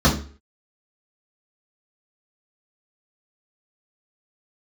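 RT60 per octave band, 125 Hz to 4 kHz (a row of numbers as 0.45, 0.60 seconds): 0.40, 0.40, 0.45, 0.40, 0.40, 0.35 seconds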